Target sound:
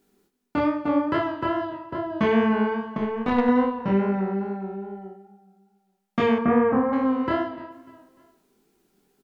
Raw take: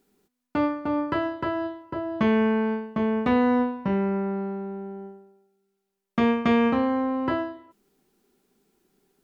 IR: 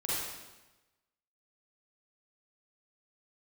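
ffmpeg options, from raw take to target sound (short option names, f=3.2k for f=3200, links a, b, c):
-filter_complex "[0:a]aecho=1:1:297|594|891:0.126|0.0478|0.0182,flanger=delay=19:depth=6.2:speed=2.4,asettb=1/sr,asplit=3[a][b][c];[a]atrim=end=2.974[d];[b]atrim=start=2.97:end=3.49,asetpts=PTS-STARTPTS,afade=t=in:d=0.004:c=qsin,afade=t=out:st=0.516:d=0.004:c=qsin,aeval=exprs='0.251*(cos(1*acos(clip(val(0)/0.251,-1,1)))-cos(1*PI/2))+0.0355*(cos(3*acos(clip(val(0)/0.251,-1,1)))-cos(3*PI/2))+0.00447*(cos(8*acos(clip(val(0)/0.251,-1,1)))-cos(8*PI/2))':c=same[e];[c]atrim=start=3.486[f];[d][e]acrossfade=d=0.004:c1=hsin:c2=qsin[g];[g][f]acrossfade=d=0.004:c1=qsin:c2=hsin,asettb=1/sr,asplit=3[h][i][j];[h]atrim=end=6.384[k];[i]atrim=start=6.38:end=6.93,asetpts=PTS-STARTPTS,afade=t=in:d=0.004:c=qsin,afade=t=out:st=0.546:d=0.004:c=qsin,lowpass=f=1.7k:w=0.5412,lowpass=f=1.7k:w=1.3066[l];[j]atrim=start=6.926[m];[k][l]acrossfade=d=0.004:c1=hsin:c2=qsin[n];[n][m]acrossfade=d=0.004:c1=qsin:c2=hsin,asplit=2[o][p];[1:a]atrim=start_sample=2205[q];[p][q]afir=irnorm=-1:irlink=0,volume=-19dB[r];[o][r]amix=inputs=2:normalize=0,volume=4dB"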